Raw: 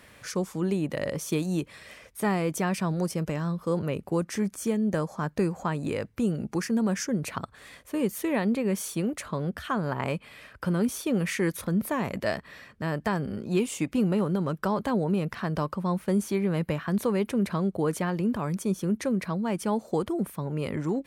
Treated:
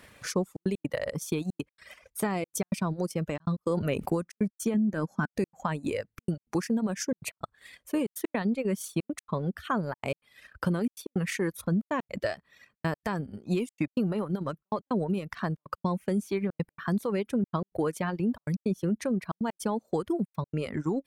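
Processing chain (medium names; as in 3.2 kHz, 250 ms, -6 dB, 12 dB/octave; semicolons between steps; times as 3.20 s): reverb removal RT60 1.3 s; trance gate "xxxxxx.x.x" 160 bpm -60 dB; 4.74–5.32 s: small resonant body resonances 230/1500 Hz, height 12 dB, ringing for 25 ms; peak limiter -21.5 dBFS, peak gain reduction 10 dB; transient shaper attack +4 dB, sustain -8 dB; 3.40–4.12 s: level flattener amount 70%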